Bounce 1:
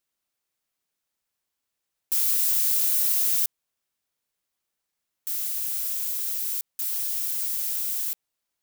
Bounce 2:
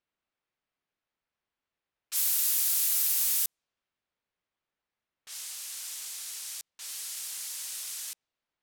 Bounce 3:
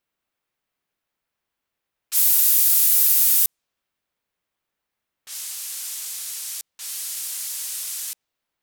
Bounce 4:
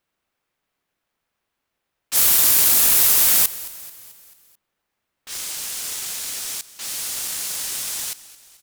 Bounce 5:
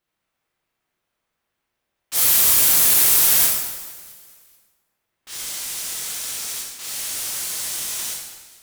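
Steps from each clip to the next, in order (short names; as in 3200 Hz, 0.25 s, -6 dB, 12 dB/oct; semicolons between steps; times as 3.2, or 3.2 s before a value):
low-pass opened by the level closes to 2800 Hz, open at -20.5 dBFS
high shelf 11000 Hz +8 dB; gain +5 dB
half-waves squared off; frequency-shifting echo 0.219 s, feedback 54%, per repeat -43 Hz, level -18 dB
plate-style reverb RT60 1.2 s, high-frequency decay 0.8×, DRR -3.5 dB; gain -4.5 dB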